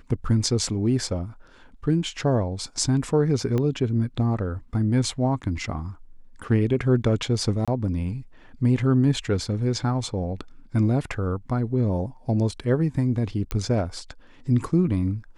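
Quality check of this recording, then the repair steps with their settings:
3.58 pop -15 dBFS
7.65–7.68 gap 26 ms
13.51 pop -11 dBFS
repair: de-click; interpolate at 7.65, 26 ms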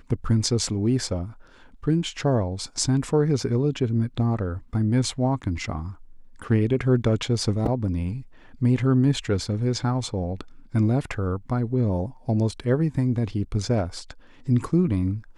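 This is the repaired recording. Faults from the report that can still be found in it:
3.58 pop

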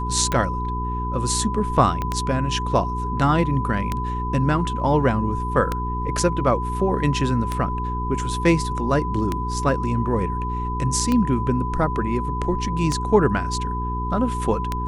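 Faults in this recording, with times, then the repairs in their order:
hum 60 Hz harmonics 7 -27 dBFS
tick 33 1/3 rpm -9 dBFS
tone 1000 Hz -27 dBFS
2.02 pop -13 dBFS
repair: de-click; de-hum 60 Hz, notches 7; notch 1000 Hz, Q 30

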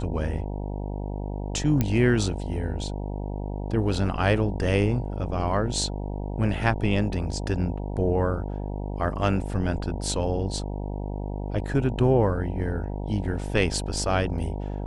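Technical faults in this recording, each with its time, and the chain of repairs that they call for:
buzz 50 Hz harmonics 19 -31 dBFS
1.81 pop -10 dBFS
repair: de-click; de-hum 50 Hz, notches 19

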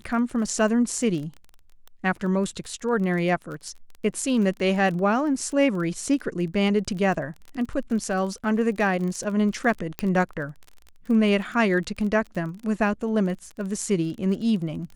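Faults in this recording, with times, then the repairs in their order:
crackle 24/s -32 dBFS
9.99 pop -13 dBFS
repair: de-click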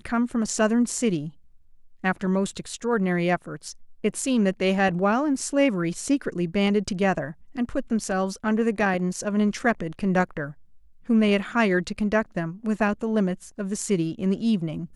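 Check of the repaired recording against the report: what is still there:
none

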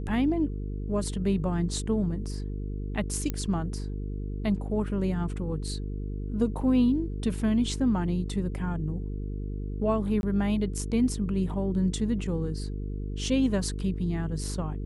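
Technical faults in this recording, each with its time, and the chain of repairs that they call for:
buzz 50 Hz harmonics 9 -33 dBFS
3.3 pop -16 dBFS
10.21–10.23 gap 21 ms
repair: de-click; de-hum 50 Hz, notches 9; interpolate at 10.21, 21 ms

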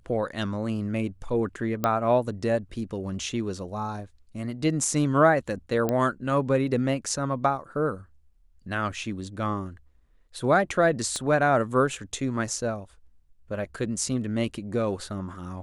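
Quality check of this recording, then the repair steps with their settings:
1.84 pop -11 dBFS
5.89 pop -13 dBFS
11.16 pop -18 dBFS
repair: de-click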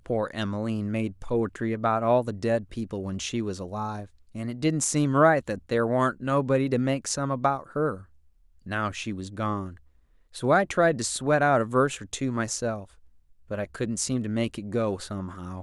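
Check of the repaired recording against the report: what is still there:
11.16 pop

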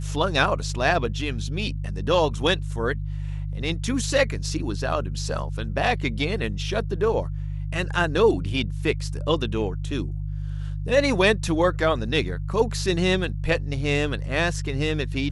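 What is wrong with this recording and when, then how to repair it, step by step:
hum 50 Hz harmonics 3 -29 dBFS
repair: de-hum 50 Hz, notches 3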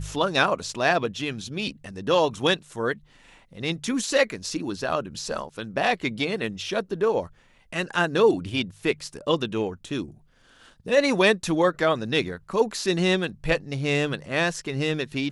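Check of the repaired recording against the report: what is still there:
none

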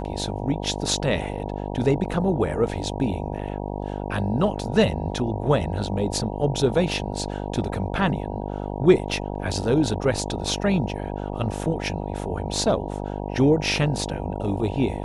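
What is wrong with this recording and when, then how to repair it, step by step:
buzz 50 Hz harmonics 19 -30 dBFS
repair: de-hum 50 Hz, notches 19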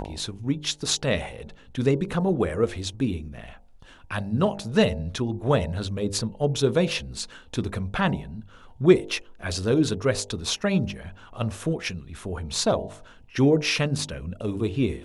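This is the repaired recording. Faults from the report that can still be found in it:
none

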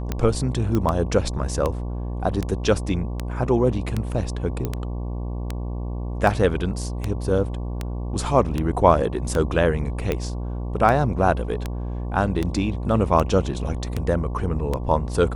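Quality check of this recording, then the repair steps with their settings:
buzz 60 Hz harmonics 19 -28 dBFS
tick 78 rpm -11 dBFS
0.75 pop -12 dBFS
4.65 pop -13 dBFS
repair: de-click; de-hum 60 Hz, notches 19

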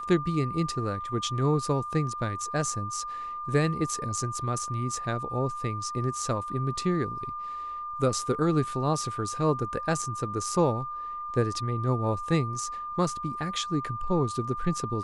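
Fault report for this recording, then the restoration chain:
tone 1200 Hz -33 dBFS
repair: notch 1200 Hz, Q 30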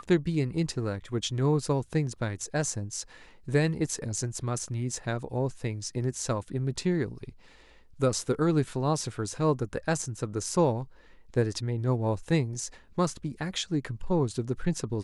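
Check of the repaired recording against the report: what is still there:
none

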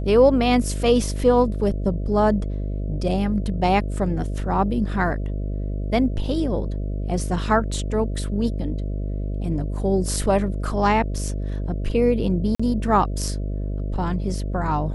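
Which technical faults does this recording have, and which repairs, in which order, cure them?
buzz 50 Hz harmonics 13 -26 dBFS
12.55–12.6 gap 45 ms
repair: de-hum 50 Hz, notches 13; interpolate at 12.55, 45 ms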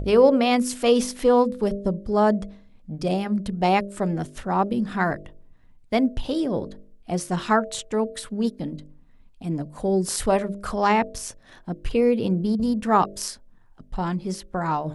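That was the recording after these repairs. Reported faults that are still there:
none

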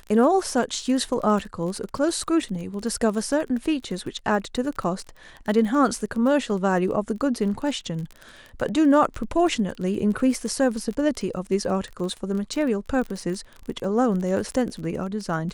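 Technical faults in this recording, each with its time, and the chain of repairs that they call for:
crackle 28/s -30 dBFS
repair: de-click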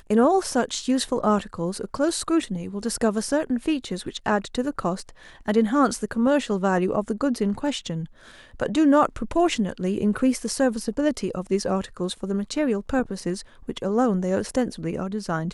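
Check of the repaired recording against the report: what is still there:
none

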